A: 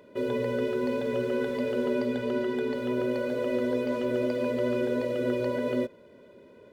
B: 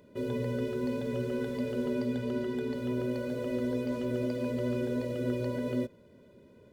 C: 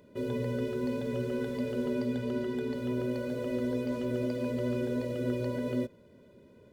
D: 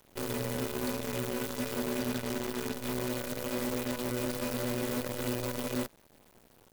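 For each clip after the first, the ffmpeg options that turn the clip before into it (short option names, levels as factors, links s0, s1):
-af "bass=f=250:g=12,treble=f=4000:g=7,volume=0.422"
-af anull
-af "aemphasis=mode=production:type=75fm,acrusher=bits=6:dc=4:mix=0:aa=0.000001,volume=0.794"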